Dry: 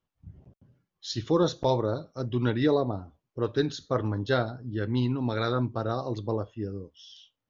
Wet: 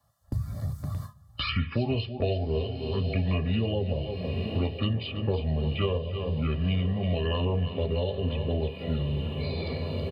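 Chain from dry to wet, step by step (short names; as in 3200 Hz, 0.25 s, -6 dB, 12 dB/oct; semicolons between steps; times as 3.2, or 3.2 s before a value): envelope phaser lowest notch 560 Hz, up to 1800 Hz, full sweep at -23.5 dBFS; HPF 120 Hz 12 dB/oct; echo 0.239 s -13 dB; in parallel at +0.5 dB: compressor 6:1, threshold -54 dBFS, peak gain reduction 31 dB; on the sum: speed mistake 45 rpm record played at 33 rpm; comb 1.7 ms, depth 97%; diffused feedback echo 0.982 s, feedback 53%, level -16 dB; gate with hold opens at -44 dBFS; on a send at -6 dB: reverb RT60 0.15 s, pre-delay 4 ms; on the sum: three-band squash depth 100%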